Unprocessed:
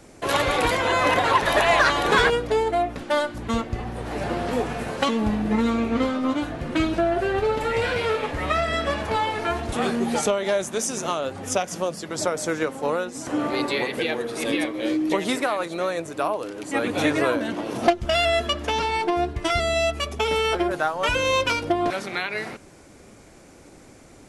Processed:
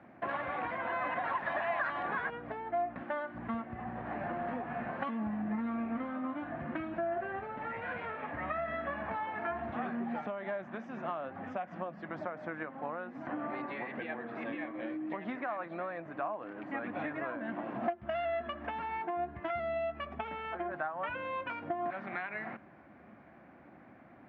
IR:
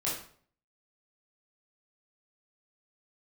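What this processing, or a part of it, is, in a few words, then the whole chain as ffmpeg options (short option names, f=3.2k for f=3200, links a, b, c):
bass amplifier: -filter_complex "[0:a]acompressor=threshold=-28dB:ratio=5,highpass=f=80:w=0.5412,highpass=f=80:w=1.3066,equalizer=f=99:t=q:w=4:g=-7,equalizer=f=220:t=q:w=4:g=5,equalizer=f=440:t=q:w=4:g=-9,equalizer=f=710:t=q:w=4:g=7,equalizer=f=1.1k:t=q:w=4:g=4,equalizer=f=1.7k:t=q:w=4:g=6,lowpass=f=2.3k:w=0.5412,lowpass=f=2.3k:w=1.3066,asettb=1/sr,asplit=3[a][b][c];[a]atrim=end=0.924[d];[b]atrim=start=0.92:end=2.03,asetpts=PTS-STARTPTS,afade=t=in:d=0.004:c=qsin,afade=t=out:st=1.106:d=0.004:c=qsin,aemphasis=mode=production:type=50kf[e];[c]atrim=start=2.026[f];[d][e]acrossfade=d=0.004:c1=hsin:c2=qsin[g];[g][f]acrossfade=d=0.004:c1=qsin:c2=hsin,volume=-8dB"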